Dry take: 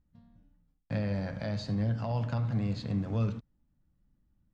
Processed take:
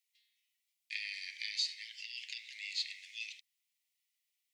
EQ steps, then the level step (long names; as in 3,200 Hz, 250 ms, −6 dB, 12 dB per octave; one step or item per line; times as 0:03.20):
Butterworth high-pass 2,000 Hz 96 dB per octave
+11.0 dB